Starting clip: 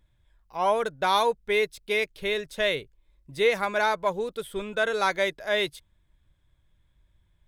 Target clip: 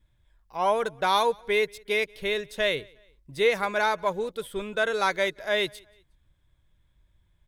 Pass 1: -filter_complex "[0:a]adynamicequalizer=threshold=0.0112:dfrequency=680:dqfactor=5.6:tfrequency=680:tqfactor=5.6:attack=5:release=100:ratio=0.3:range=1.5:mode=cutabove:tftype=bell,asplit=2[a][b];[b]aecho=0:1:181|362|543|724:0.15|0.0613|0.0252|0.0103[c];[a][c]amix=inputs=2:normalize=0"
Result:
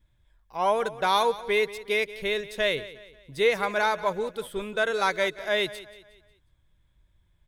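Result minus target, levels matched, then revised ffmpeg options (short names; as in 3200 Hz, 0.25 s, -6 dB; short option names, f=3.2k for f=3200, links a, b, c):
echo-to-direct +11 dB
-filter_complex "[0:a]adynamicequalizer=threshold=0.0112:dfrequency=680:dqfactor=5.6:tfrequency=680:tqfactor=5.6:attack=5:release=100:ratio=0.3:range=1.5:mode=cutabove:tftype=bell,asplit=2[a][b];[b]aecho=0:1:181|362:0.0422|0.0173[c];[a][c]amix=inputs=2:normalize=0"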